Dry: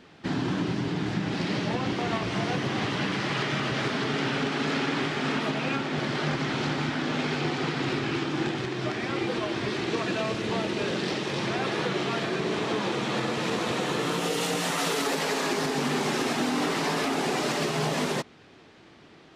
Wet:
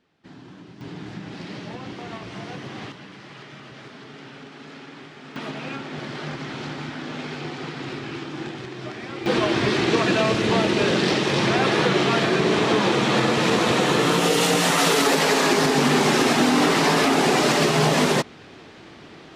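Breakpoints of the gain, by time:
-16 dB
from 0.81 s -7 dB
from 2.92 s -14 dB
from 5.36 s -4 dB
from 9.26 s +8.5 dB

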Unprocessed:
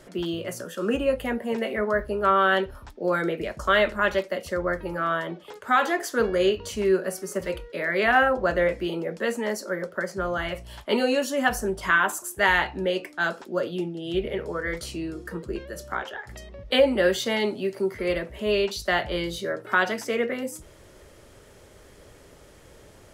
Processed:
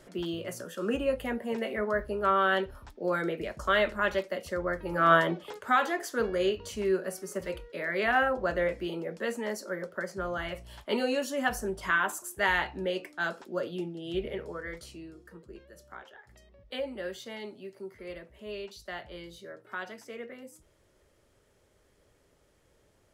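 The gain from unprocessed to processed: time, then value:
4.83 s -5 dB
5.13 s +6 dB
5.89 s -6 dB
14.28 s -6 dB
15.28 s -16 dB

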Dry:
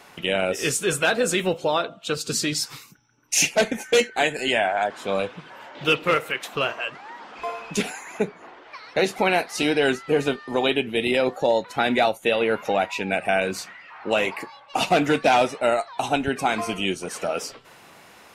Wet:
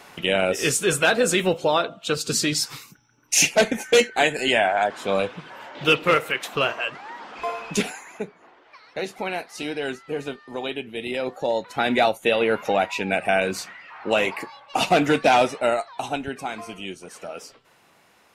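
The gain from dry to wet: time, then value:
7.76 s +2 dB
8.27 s -8 dB
10.96 s -8 dB
12.03 s +1 dB
15.52 s +1 dB
16.59 s -9 dB

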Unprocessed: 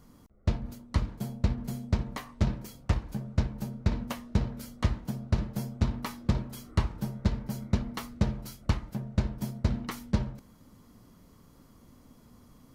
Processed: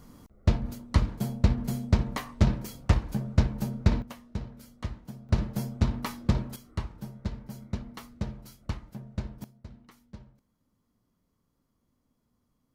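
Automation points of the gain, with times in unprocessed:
+4.5 dB
from 4.02 s -8 dB
from 5.29 s +2 dB
from 6.56 s -6.5 dB
from 9.44 s -19 dB

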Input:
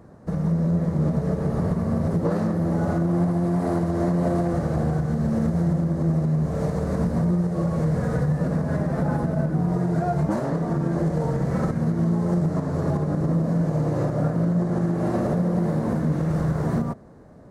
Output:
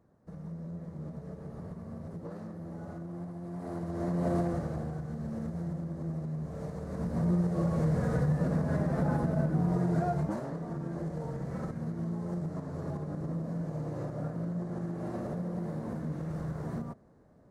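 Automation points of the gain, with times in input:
3.4 s -19 dB
4.37 s -6 dB
4.9 s -14 dB
6.88 s -14 dB
7.32 s -5.5 dB
10.01 s -5.5 dB
10.53 s -13 dB

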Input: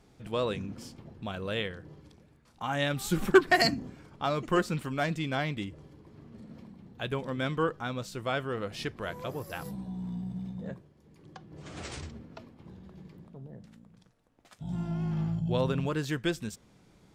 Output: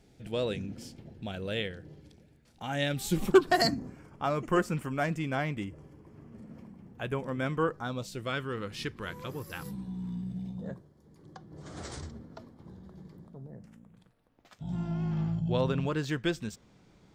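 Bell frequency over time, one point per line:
bell -12.5 dB 0.52 oct
2.99 s 1100 Hz
3.99 s 3900 Hz
7.68 s 3900 Hz
8.36 s 660 Hz
10.22 s 660 Hz
10.68 s 2600 Hz
13.34 s 2600 Hz
14.63 s 11000 Hz

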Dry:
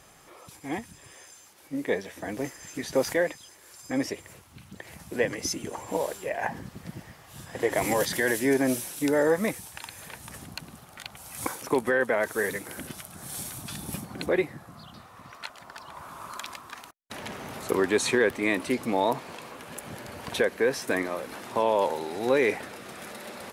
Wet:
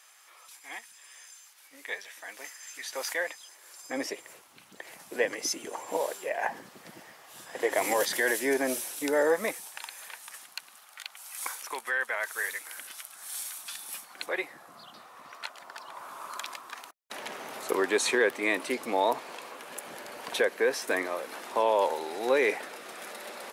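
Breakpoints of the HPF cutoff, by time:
2.8 s 1300 Hz
4.03 s 410 Hz
9.4 s 410 Hz
10.39 s 1200 Hz
14.1 s 1200 Hz
14.77 s 390 Hz

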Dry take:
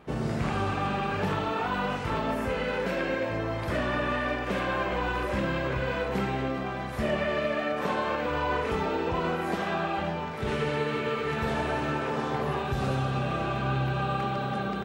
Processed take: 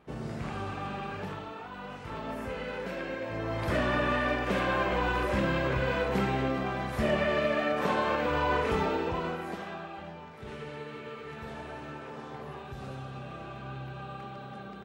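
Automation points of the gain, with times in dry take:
1.09 s -7.5 dB
1.7 s -14 dB
2.38 s -7 dB
3.21 s -7 dB
3.66 s +0.5 dB
8.82 s +0.5 dB
9.9 s -12.5 dB

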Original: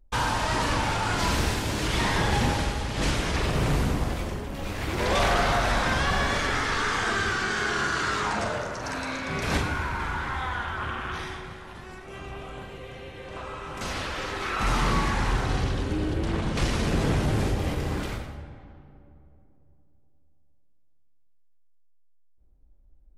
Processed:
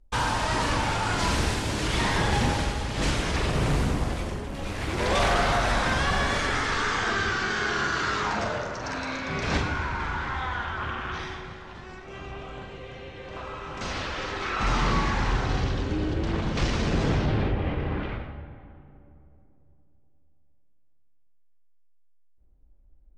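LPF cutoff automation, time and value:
LPF 24 dB/oct
6.4 s 11000 Hz
7.14 s 6700 Hz
17.1 s 6700 Hz
17.54 s 3000 Hz

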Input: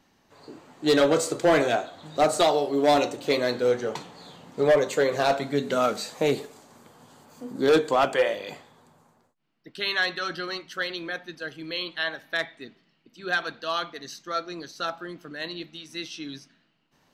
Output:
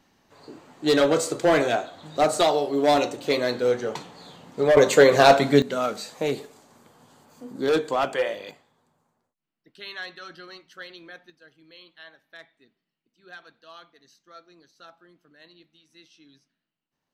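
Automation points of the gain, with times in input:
+0.5 dB
from 4.77 s +8.5 dB
from 5.62 s -2.5 dB
from 8.51 s -11 dB
from 11.3 s -18 dB

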